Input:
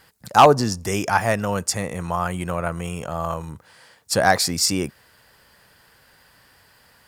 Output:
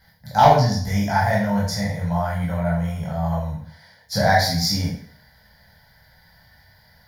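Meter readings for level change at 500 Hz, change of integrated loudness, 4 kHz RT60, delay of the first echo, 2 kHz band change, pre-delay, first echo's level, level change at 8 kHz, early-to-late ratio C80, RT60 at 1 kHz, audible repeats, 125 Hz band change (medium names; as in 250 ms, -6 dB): -1.5 dB, 0.0 dB, 0.50 s, no echo, -0.5 dB, 7 ms, no echo, -7.5 dB, 7.5 dB, 0.55 s, no echo, +6.5 dB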